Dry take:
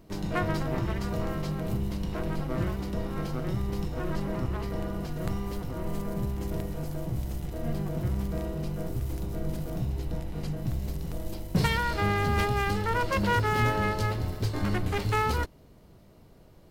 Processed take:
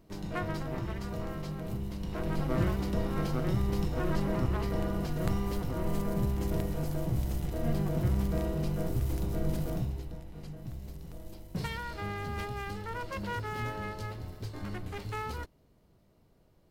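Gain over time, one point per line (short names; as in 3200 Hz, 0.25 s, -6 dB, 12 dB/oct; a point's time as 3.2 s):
1.95 s -6 dB
2.46 s +1 dB
9.7 s +1 dB
10.17 s -10.5 dB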